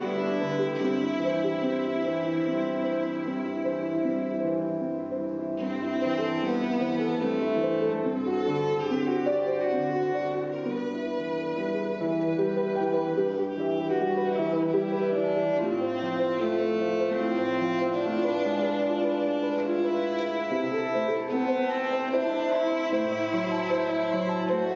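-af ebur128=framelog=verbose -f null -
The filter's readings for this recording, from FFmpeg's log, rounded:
Integrated loudness:
  I:         -27.3 LUFS
  Threshold: -37.3 LUFS
Loudness range:
  LRA:         2.0 LU
  Threshold: -47.3 LUFS
  LRA low:   -28.5 LUFS
  LRA high:  -26.5 LUFS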